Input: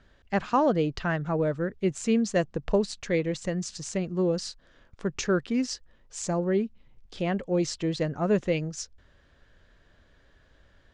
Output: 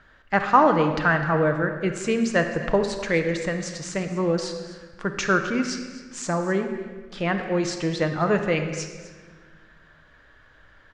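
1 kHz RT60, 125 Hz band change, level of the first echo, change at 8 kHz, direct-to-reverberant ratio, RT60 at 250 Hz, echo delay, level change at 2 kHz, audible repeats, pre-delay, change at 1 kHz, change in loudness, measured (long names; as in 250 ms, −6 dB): 1.4 s, +3.0 dB, −17.0 dB, +2.0 dB, 5.0 dB, 2.1 s, 256 ms, +11.0 dB, 1, 6 ms, +9.0 dB, +4.5 dB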